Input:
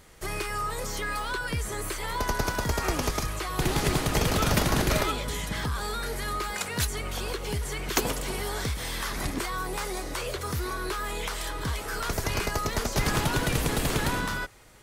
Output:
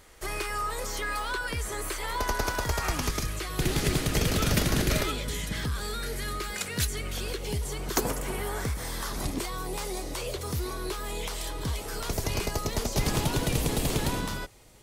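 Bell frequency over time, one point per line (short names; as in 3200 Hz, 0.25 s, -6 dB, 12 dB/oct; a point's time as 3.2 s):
bell -8.5 dB 1.1 oct
2.56 s 150 Hz
3.22 s 920 Hz
7.27 s 920 Hz
8.4 s 5200 Hz
9.4 s 1500 Hz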